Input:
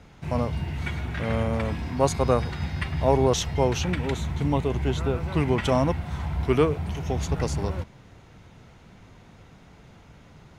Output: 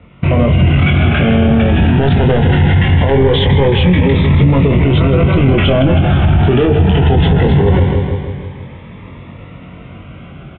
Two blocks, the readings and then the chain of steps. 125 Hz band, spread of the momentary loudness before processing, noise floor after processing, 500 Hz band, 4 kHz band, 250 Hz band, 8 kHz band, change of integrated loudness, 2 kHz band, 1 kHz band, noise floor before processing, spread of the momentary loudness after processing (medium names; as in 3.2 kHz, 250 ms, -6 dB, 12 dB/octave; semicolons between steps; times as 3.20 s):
+17.5 dB, 8 LU, -34 dBFS, +11.5 dB, +14.5 dB, +16.0 dB, under -35 dB, +14.5 dB, +15.5 dB, +9.5 dB, -51 dBFS, 3 LU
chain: high-pass 53 Hz 12 dB/octave; saturation -22.5 dBFS, distortion -8 dB; dynamic bell 1.2 kHz, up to -5 dB, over -44 dBFS, Q 1.4; compression 6:1, threshold -34 dBFS, peak gain reduction 9 dB; steep low-pass 3.5 kHz 96 dB/octave; gate -40 dBFS, range -18 dB; level rider gain up to 9 dB; doubling 22 ms -4 dB; feedback delay 159 ms, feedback 58%, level -12 dB; loudness maximiser +28 dB; Shepard-style phaser rising 0.21 Hz; trim -2 dB